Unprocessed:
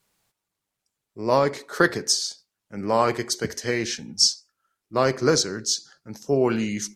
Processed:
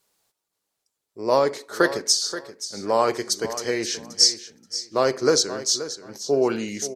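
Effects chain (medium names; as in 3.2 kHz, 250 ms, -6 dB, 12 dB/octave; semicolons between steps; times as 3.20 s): FFT filter 160 Hz 0 dB, 440 Hz +10 dB, 2.3 kHz +5 dB, 4.3 kHz +10 dB; on a send: feedback delay 528 ms, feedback 19%, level -13 dB; on the sum: trim -8 dB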